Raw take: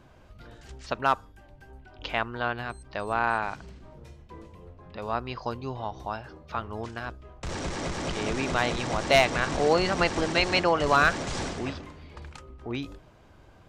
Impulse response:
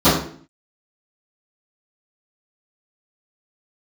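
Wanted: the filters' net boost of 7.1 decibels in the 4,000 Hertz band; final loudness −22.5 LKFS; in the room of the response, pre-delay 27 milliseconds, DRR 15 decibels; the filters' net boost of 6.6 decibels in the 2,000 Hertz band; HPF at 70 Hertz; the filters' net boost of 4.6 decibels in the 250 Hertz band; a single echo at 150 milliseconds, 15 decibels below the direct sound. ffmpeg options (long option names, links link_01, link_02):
-filter_complex "[0:a]highpass=70,equalizer=frequency=250:width_type=o:gain=6,equalizer=frequency=2000:width_type=o:gain=7,equalizer=frequency=4000:width_type=o:gain=6.5,aecho=1:1:150:0.178,asplit=2[link_01][link_02];[1:a]atrim=start_sample=2205,adelay=27[link_03];[link_02][link_03]afir=irnorm=-1:irlink=0,volume=-40dB[link_04];[link_01][link_04]amix=inputs=2:normalize=0"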